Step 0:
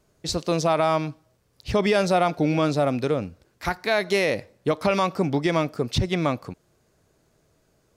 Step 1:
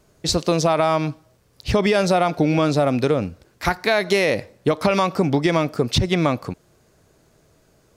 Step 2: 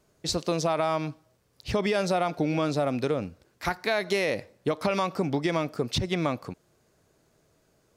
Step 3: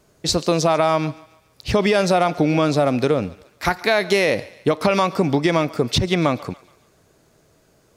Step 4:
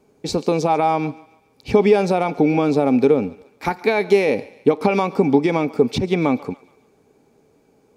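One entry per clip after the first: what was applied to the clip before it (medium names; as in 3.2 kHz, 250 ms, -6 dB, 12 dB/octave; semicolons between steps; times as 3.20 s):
compression, threshold -21 dBFS, peak gain reduction 5.5 dB; trim +7 dB
bass shelf 94 Hz -5.5 dB; trim -7.5 dB
thinning echo 141 ms, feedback 47%, high-pass 610 Hz, level -19 dB; trim +8.5 dB
small resonant body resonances 260/420/800/2300 Hz, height 15 dB, ringing for 30 ms; trim -9 dB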